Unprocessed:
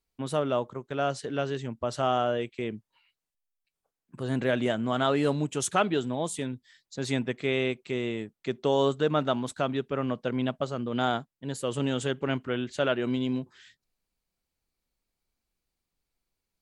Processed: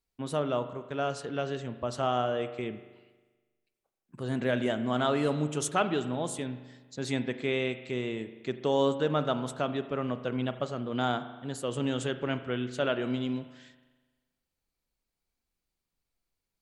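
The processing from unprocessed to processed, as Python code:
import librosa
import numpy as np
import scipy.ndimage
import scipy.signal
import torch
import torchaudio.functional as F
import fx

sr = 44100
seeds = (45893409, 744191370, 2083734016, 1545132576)

y = fx.rev_spring(x, sr, rt60_s=1.3, pass_ms=(40,), chirp_ms=70, drr_db=10.5)
y = F.gain(torch.from_numpy(y), -2.5).numpy()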